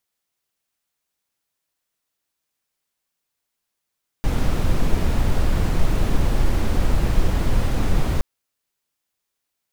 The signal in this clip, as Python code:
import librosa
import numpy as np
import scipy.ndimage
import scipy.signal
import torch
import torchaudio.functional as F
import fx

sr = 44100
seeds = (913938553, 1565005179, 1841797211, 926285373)

y = fx.noise_colour(sr, seeds[0], length_s=3.97, colour='brown', level_db=-16.5)